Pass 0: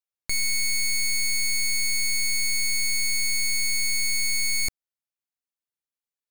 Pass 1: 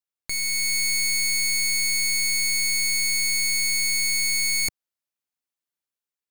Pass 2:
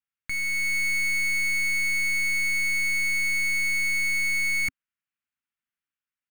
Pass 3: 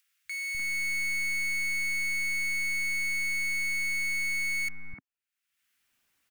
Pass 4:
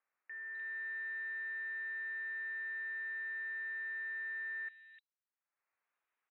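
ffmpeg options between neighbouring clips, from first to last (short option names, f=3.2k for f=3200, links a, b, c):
-af "lowshelf=f=64:g=-7,dynaudnorm=f=150:g=7:m=4dB,volume=-1.5dB"
-af "firequalizer=gain_entry='entry(260,0);entry(410,-15);entry(1400,4);entry(2800,2);entry(4100,-11)':delay=0.05:min_phase=1"
-filter_complex "[0:a]acompressor=mode=upward:threshold=-49dB:ratio=2.5,acrossover=split=160|1400[a][b][c];[a]adelay=250[d];[b]adelay=300[e];[d][e][c]amix=inputs=3:normalize=0,volume=-5dB"
-filter_complex "[0:a]highpass=f=150:p=1,lowpass=f=3.4k:t=q:w=0.5098,lowpass=f=3.4k:t=q:w=0.6013,lowpass=f=3.4k:t=q:w=0.9,lowpass=f=3.4k:t=q:w=2.563,afreqshift=-4000,acrossover=split=220 2500:gain=0.1 1 0.141[a][b][c];[a][b][c]amix=inputs=3:normalize=0,volume=-8.5dB"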